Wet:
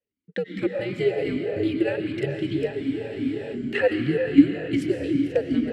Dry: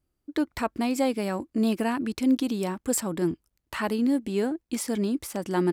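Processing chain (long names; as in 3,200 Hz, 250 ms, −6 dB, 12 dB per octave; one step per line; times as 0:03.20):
transient designer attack +8 dB, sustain −10 dB
automatic gain control gain up to 9 dB
in parallel at −2.5 dB: brickwall limiter −11.5 dBFS, peak gain reduction 9.5 dB
on the sum: shaped tremolo saw down 3.2 Hz, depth 50%
frequency shifter −120 Hz
on a send at −1.5 dB: convolution reverb RT60 4.7 s, pre-delay 75 ms
on the sum: frozen spectrum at 0:02.74, 0.79 s
formant filter swept between two vowels e-i 2.6 Hz
level +3.5 dB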